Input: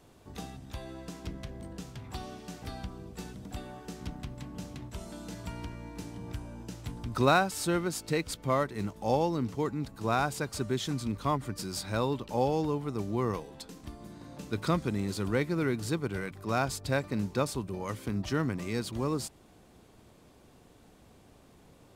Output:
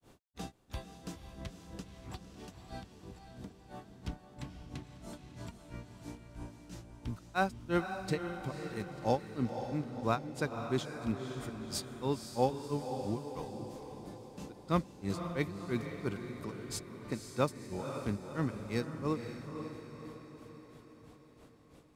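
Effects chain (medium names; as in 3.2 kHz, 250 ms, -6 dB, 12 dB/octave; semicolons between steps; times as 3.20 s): granulator 202 ms, grains 3 per s, spray 17 ms, pitch spread up and down by 0 st; on a send: echo that smears into a reverb 513 ms, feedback 55%, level -7.5 dB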